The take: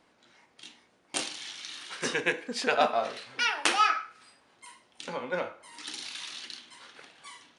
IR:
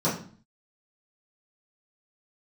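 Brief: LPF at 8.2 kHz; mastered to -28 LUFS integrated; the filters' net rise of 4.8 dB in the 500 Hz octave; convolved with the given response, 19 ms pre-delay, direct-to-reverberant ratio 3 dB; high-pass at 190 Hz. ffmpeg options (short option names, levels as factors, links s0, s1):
-filter_complex "[0:a]highpass=190,lowpass=8200,equalizer=f=500:t=o:g=6,asplit=2[s0][s1];[1:a]atrim=start_sample=2205,adelay=19[s2];[s1][s2]afir=irnorm=-1:irlink=0,volume=0.168[s3];[s0][s3]amix=inputs=2:normalize=0,volume=0.794"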